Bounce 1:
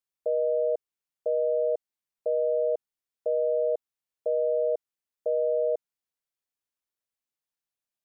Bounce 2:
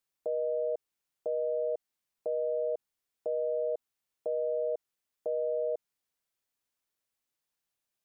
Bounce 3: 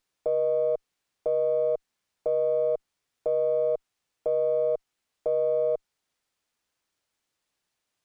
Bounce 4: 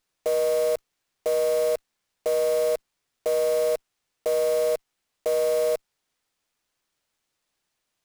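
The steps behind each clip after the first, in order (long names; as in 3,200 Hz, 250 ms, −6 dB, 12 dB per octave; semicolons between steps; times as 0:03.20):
brickwall limiter −29.5 dBFS, peak gain reduction 10.5 dB; level +4.5 dB
windowed peak hold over 3 samples; level +6.5 dB
one scale factor per block 3 bits; level +2 dB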